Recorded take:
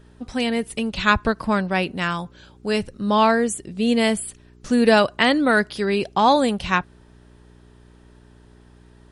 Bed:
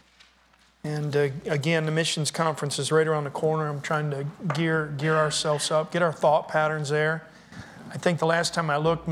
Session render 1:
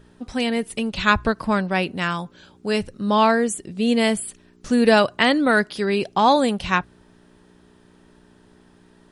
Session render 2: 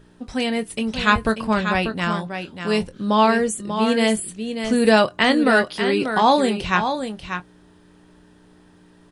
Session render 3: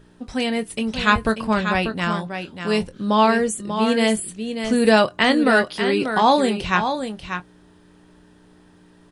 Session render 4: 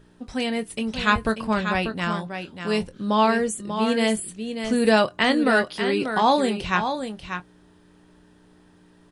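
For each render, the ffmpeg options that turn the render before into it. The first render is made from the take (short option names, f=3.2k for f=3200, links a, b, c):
-af "bandreject=f=60:t=h:w=4,bandreject=f=120:t=h:w=4"
-filter_complex "[0:a]asplit=2[a][b];[b]adelay=23,volume=-11dB[c];[a][c]amix=inputs=2:normalize=0,aecho=1:1:590:0.398"
-af anull
-af "volume=-3dB"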